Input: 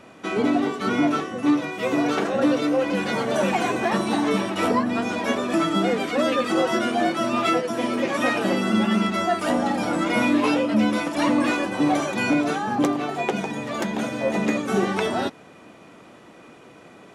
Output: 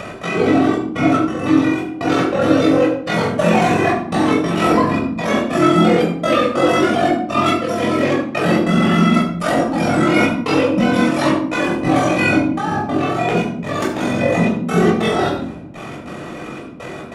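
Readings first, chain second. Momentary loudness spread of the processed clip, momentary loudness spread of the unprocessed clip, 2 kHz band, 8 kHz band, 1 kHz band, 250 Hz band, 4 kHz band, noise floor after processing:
8 LU, 5 LU, +5.5 dB, +3.5 dB, +6.0 dB, +6.0 dB, +4.5 dB, −31 dBFS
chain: gate pattern "x.xxxxx..x" 142 BPM −60 dB
ring modulation 22 Hz
rectangular room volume 970 cubic metres, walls furnished, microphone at 6.2 metres
upward compression, threshold −22 dBFS
level +2.5 dB

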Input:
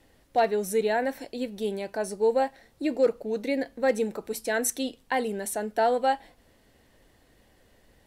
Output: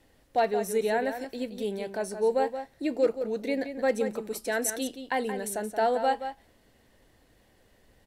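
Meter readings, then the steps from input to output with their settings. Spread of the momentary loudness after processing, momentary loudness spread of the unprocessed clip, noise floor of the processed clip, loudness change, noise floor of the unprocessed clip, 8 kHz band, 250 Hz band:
7 LU, 8 LU, −63 dBFS, −1.5 dB, −62 dBFS, −1.5 dB, −1.5 dB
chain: slap from a distant wall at 30 metres, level −9 dB
level −2 dB

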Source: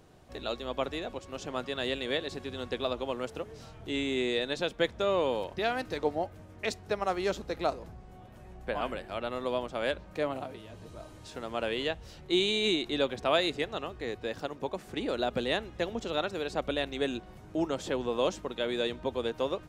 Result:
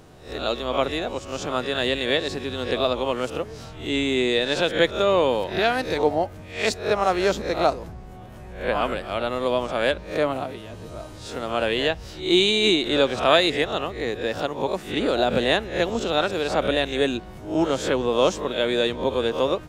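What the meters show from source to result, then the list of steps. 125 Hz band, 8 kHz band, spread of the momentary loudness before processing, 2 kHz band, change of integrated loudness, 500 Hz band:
+9.5 dB, +10.0 dB, 13 LU, +10.0 dB, +9.5 dB, +9.0 dB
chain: peak hold with a rise ahead of every peak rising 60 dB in 0.40 s
level +8 dB

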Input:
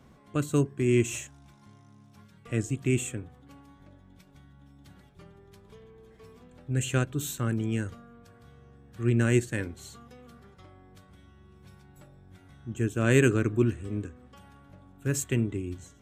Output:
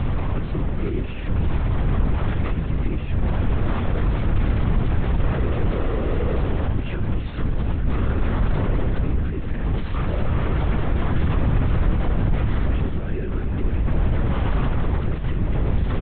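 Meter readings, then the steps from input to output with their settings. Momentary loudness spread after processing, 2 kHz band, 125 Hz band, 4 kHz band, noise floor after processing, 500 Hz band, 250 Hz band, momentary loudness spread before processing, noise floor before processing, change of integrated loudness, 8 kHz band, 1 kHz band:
4 LU, +2.0 dB, +9.0 dB, +3.5 dB, −26 dBFS, +2.0 dB, +4.0 dB, 16 LU, −57 dBFS, +4.0 dB, below −40 dB, +12.5 dB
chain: linear delta modulator 64 kbit/s, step −22 dBFS
speech leveller 0.5 s
brickwall limiter −21.5 dBFS, peak gain reduction 9.5 dB
high-frequency loss of the air 370 metres
single-tap delay 319 ms −9 dB
linear-prediction vocoder at 8 kHz whisper
low-shelf EQ 170 Hz +11.5 dB

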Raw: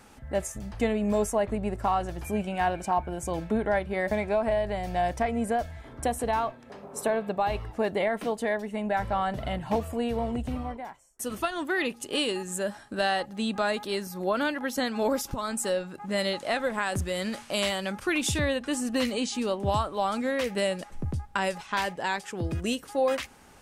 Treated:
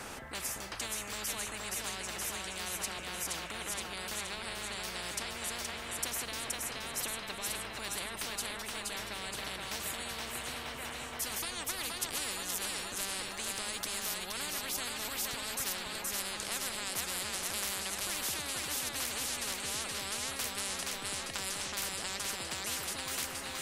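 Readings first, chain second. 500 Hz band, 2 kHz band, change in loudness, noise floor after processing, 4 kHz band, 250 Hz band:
−18.0 dB, −5.5 dB, −6.5 dB, −43 dBFS, −0.5 dB, −17.5 dB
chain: echo with a time of its own for lows and highs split 400 Hz, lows 266 ms, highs 472 ms, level −6 dB
every bin compressed towards the loudest bin 10 to 1
level −4 dB

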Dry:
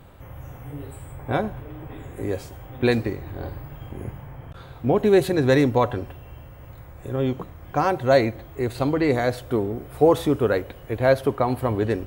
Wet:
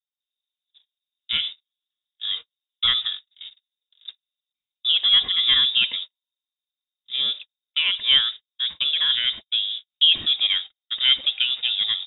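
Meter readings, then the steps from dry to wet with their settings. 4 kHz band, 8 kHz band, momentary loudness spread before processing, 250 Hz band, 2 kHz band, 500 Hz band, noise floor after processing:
+23.5 dB, below −35 dB, 20 LU, below −25 dB, +1.5 dB, below −30 dB, below −85 dBFS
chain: noise gate −29 dBFS, range −51 dB
voice inversion scrambler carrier 3,700 Hz
level −1 dB

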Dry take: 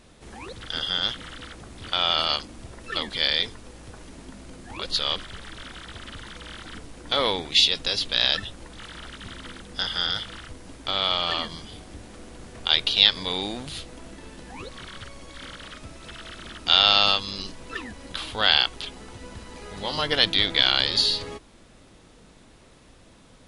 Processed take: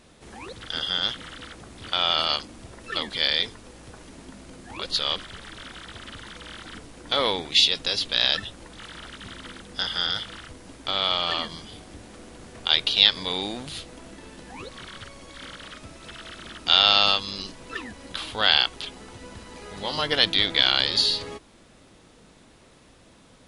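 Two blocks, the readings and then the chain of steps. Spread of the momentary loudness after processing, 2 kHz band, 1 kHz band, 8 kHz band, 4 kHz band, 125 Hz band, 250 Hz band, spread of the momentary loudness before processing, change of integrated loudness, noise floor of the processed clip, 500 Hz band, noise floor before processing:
22 LU, 0.0 dB, 0.0 dB, 0.0 dB, 0.0 dB, −2.0 dB, −0.5 dB, 22 LU, 0.0 dB, −54 dBFS, 0.0 dB, −52 dBFS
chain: low-shelf EQ 64 Hz −7.5 dB

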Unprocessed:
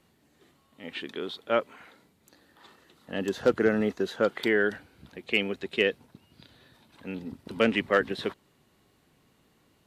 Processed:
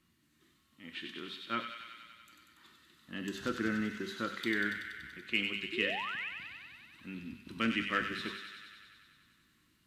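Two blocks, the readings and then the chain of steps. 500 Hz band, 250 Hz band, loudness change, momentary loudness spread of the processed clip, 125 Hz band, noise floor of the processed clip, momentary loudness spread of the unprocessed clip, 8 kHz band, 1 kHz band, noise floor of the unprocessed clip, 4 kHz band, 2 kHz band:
−16.0 dB, −6.5 dB, −8.0 dB, 17 LU, −6.5 dB, −72 dBFS, 20 LU, can't be measured, −5.0 dB, −66 dBFS, −3.0 dB, −4.0 dB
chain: flat-topped bell 600 Hz −14 dB 1.3 octaves
coupled-rooms reverb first 0.5 s, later 1.7 s, from −16 dB, DRR 7 dB
sound drawn into the spectrogram rise, 0:05.72–0:06.29, 310–2,800 Hz −34 dBFS
hum removal 196.1 Hz, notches 3
on a send: delay with a high-pass on its return 95 ms, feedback 75%, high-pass 2,000 Hz, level −4 dB
on the sum: level −6.5 dB

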